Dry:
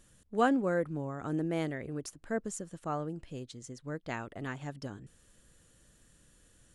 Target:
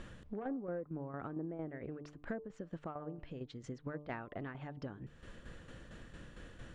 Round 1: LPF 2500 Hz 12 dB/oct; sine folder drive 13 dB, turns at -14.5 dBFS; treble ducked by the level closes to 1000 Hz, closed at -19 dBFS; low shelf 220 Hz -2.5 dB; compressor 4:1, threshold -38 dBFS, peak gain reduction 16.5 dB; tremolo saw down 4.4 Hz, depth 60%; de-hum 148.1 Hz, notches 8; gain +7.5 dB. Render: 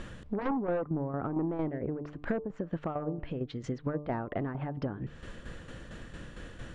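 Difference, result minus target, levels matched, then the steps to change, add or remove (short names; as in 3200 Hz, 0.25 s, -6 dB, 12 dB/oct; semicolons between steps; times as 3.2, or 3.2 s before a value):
compressor: peak gain reduction -8 dB; sine folder: distortion +11 dB
change: sine folder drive 6 dB, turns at -14.5 dBFS; change: compressor 4:1, threshold -49 dBFS, peak gain reduction 24.5 dB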